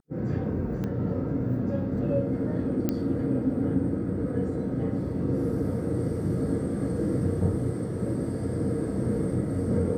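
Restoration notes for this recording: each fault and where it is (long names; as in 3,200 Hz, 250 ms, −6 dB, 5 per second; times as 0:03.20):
0:00.84: click −21 dBFS
0:02.89: click −13 dBFS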